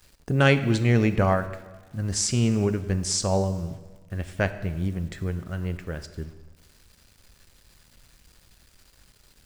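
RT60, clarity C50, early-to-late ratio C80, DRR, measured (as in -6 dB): 1.3 s, 12.5 dB, 14.0 dB, 10.0 dB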